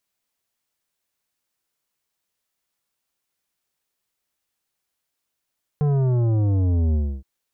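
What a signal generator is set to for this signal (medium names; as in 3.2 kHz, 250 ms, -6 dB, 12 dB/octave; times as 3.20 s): sub drop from 150 Hz, over 1.42 s, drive 11 dB, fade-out 0.29 s, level -18 dB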